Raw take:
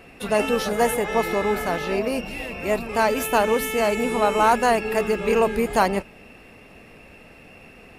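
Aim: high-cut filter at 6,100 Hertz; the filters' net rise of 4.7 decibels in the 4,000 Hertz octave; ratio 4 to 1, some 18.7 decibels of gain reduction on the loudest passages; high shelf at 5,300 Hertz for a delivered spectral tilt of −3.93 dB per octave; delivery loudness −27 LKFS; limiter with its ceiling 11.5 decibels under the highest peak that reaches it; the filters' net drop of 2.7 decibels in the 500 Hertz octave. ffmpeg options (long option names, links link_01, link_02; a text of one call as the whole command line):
ffmpeg -i in.wav -af "lowpass=6100,equalizer=frequency=500:width_type=o:gain=-3.5,equalizer=frequency=4000:width_type=o:gain=4.5,highshelf=frequency=5300:gain=6.5,acompressor=threshold=-38dB:ratio=4,volume=17dB,alimiter=limit=-18dB:level=0:latency=1" out.wav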